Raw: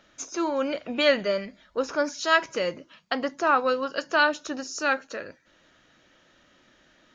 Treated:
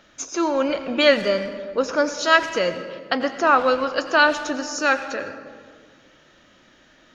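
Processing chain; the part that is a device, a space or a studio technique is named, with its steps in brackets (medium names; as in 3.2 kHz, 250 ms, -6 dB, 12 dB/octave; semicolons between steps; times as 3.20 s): saturated reverb return (on a send at -8.5 dB: reverberation RT60 1.7 s, pre-delay 82 ms + saturation -22.5 dBFS, distortion -12 dB); on the sum: trim +5 dB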